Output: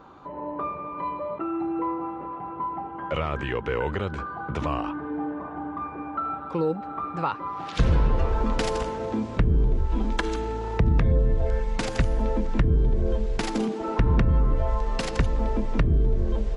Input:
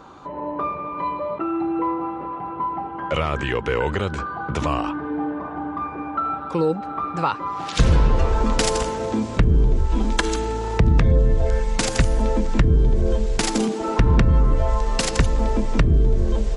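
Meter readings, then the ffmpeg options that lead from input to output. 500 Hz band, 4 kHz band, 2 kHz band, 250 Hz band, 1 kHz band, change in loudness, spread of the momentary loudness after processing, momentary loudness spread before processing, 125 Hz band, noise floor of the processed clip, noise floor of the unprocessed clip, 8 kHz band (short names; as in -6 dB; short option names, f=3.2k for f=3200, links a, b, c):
-4.5 dB, -8.5 dB, -6.0 dB, -4.5 dB, -5.0 dB, -5.0 dB, 9 LU, 9 LU, -4.5 dB, -37 dBFS, -32 dBFS, -14.0 dB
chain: -af "equalizer=f=8.5k:w=0.62:g=-11,volume=-4.5dB"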